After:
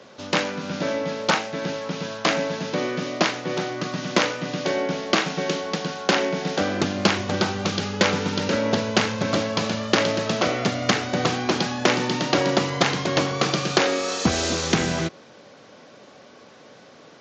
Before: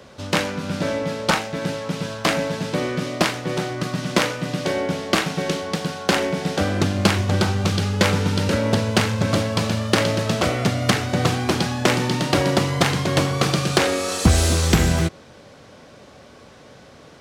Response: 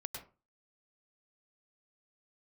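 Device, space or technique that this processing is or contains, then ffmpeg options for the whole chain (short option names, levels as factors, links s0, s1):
Bluetooth headset: -af "highpass=190,dynaudnorm=f=250:g=31:m=2.66,aresample=16000,aresample=44100,volume=0.891" -ar 16000 -c:a sbc -b:a 64k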